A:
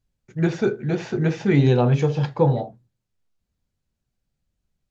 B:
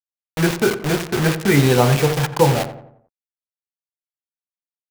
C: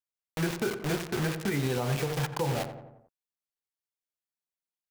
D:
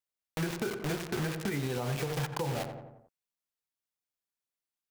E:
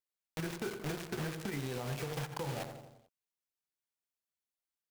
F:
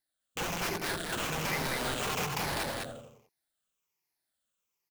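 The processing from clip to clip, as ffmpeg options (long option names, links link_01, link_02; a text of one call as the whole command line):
ffmpeg -i in.wav -filter_complex "[0:a]equalizer=frequency=1500:width=0.49:gain=8,acrusher=bits=3:mix=0:aa=0.000001,asplit=2[link_01][link_02];[link_02]adelay=88,lowpass=frequency=1600:poles=1,volume=-11dB,asplit=2[link_03][link_04];[link_04]adelay=88,lowpass=frequency=1600:poles=1,volume=0.48,asplit=2[link_05][link_06];[link_06]adelay=88,lowpass=frequency=1600:poles=1,volume=0.48,asplit=2[link_07][link_08];[link_08]adelay=88,lowpass=frequency=1600:poles=1,volume=0.48,asplit=2[link_09][link_10];[link_10]adelay=88,lowpass=frequency=1600:poles=1,volume=0.48[link_11];[link_01][link_03][link_05][link_07][link_09][link_11]amix=inputs=6:normalize=0,volume=1dB" out.wav
ffmpeg -i in.wav -af "acompressor=threshold=-39dB:ratio=1.5,alimiter=limit=-17.5dB:level=0:latency=1:release=100,volume=-2dB" out.wav
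ffmpeg -i in.wav -af "acompressor=threshold=-29dB:ratio=6" out.wav
ffmpeg -i in.wav -af "acrusher=bits=2:mode=log:mix=0:aa=0.000001,volume=-6dB" out.wav
ffmpeg -i in.wav -filter_complex "[0:a]afftfilt=real='re*pow(10,14/40*sin(2*PI*(0.78*log(max(b,1)*sr/1024/100)/log(2)-(-1.2)*(pts-256)/sr)))':imag='im*pow(10,14/40*sin(2*PI*(0.78*log(max(b,1)*sr/1024/100)/log(2)-(-1.2)*(pts-256)/sr)))':win_size=1024:overlap=0.75,acrossover=split=850|3500[link_01][link_02][link_03];[link_01]aeval=exprs='(mod(56.2*val(0)+1,2)-1)/56.2':channel_layout=same[link_04];[link_04][link_02][link_03]amix=inputs=3:normalize=0,aecho=1:1:201:0.668,volume=4.5dB" out.wav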